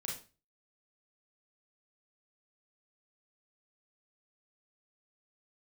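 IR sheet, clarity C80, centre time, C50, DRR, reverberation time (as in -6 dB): 11.5 dB, 35 ms, 4.5 dB, -3.0 dB, 0.35 s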